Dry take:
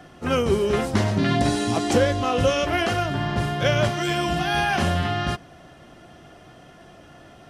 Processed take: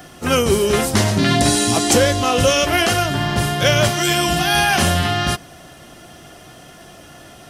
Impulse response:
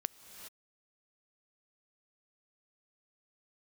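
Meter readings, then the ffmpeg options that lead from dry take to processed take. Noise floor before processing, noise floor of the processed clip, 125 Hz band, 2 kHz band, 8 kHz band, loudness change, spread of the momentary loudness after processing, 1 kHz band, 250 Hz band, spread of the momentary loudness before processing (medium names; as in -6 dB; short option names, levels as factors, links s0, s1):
-48 dBFS, -42 dBFS, +4.5 dB, +7.0 dB, +15.5 dB, +6.0 dB, 5 LU, +5.0 dB, +4.5 dB, 4 LU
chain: -af "apsyclip=3.98,aemphasis=mode=production:type=75kf,volume=0.422"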